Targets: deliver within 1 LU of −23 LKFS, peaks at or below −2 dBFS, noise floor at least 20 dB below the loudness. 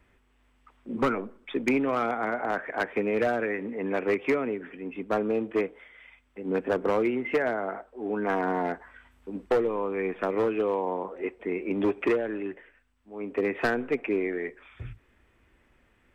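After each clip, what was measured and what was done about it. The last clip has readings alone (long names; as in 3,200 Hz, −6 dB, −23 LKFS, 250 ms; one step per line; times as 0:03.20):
share of clipped samples 0.9%; peaks flattened at −18.5 dBFS; integrated loudness −29.0 LKFS; sample peak −18.5 dBFS; target loudness −23.0 LKFS
→ clipped peaks rebuilt −18.5 dBFS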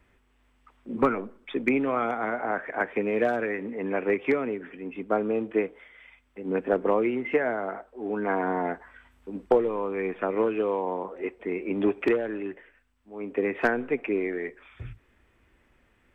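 share of clipped samples 0.0%; integrated loudness −28.0 LKFS; sample peak −9.5 dBFS; target loudness −23.0 LKFS
→ level +5 dB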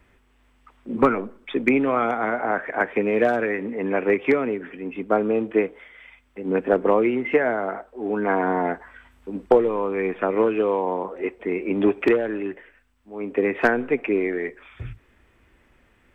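integrated loudness −23.0 LKFS; sample peak −4.5 dBFS; background noise floor −61 dBFS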